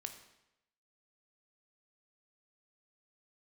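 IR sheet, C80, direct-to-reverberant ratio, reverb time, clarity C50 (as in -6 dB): 11.5 dB, 6.0 dB, 0.85 s, 9.5 dB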